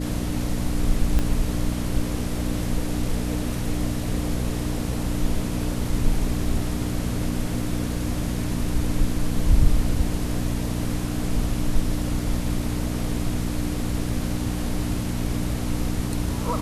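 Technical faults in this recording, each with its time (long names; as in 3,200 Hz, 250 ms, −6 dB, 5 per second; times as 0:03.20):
mains hum 60 Hz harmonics 5 −28 dBFS
0:01.19: click −10 dBFS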